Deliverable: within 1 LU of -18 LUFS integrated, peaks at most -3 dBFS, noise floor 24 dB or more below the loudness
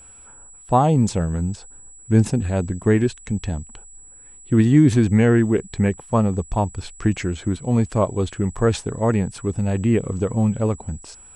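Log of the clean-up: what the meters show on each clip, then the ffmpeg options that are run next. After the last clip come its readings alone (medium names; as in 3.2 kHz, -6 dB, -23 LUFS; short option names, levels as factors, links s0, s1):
steady tone 7.8 kHz; tone level -43 dBFS; loudness -20.5 LUFS; peak level -3.5 dBFS; loudness target -18.0 LUFS
-> -af "bandreject=f=7800:w=30"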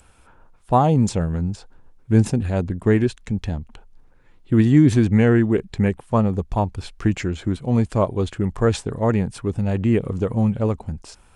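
steady tone not found; loudness -20.5 LUFS; peak level -3.5 dBFS; loudness target -18.0 LUFS
-> -af "volume=1.33,alimiter=limit=0.708:level=0:latency=1"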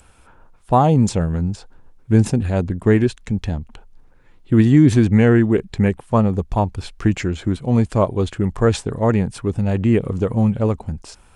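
loudness -18.0 LUFS; peak level -3.0 dBFS; noise floor -50 dBFS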